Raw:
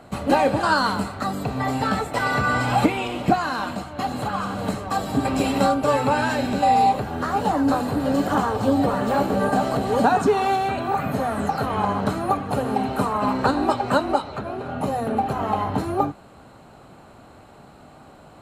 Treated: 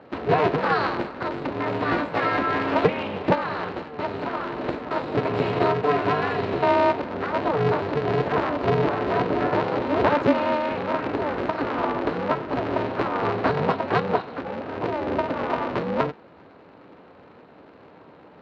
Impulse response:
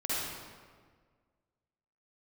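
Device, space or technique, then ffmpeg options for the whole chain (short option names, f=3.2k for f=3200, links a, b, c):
ring modulator pedal into a guitar cabinet: -filter_complex "[0:a]aeval=exprs='val(0)*sgn(sin(2*PI*150*n/s))':c=same,highpass=54,highpass=100,equalizer=f=180:t=q:w=4:g=5,equalizer=f=290:t=q:w=4:g=4,equalizer=f=490:t=q:w=4:g=5,equalizer=f=3.3k:t=q:w=4:g=-4,lowpass=f=3.7k:w=0.5412,lowpass=f=3.7k:w=1.3066,asettb=1/sr,asplit=3[a][b][c];[a]atrim=end=1.864[d];[b]atrim=start=1.86:end=2.37,asetpts=PTS-STARTPTS,afade=t=in:d=0.004:c=qsin,afade=t=out:st=0.506:d=0.004:c=qsin,asplit=2[e][f];[f]adelay=18,volume=-2dB[g];[e][g]amix=inputs=2:normalize=0,atrim=end_sample=22491[h];[c]atrim=start=2.366[i];[d][h]acrossfade=d=0.004:c1=hsin:c2=qsin[j];[j][i]acrossfade=d=0.004:c1=qsin:c2=hsin,volume=-3dB"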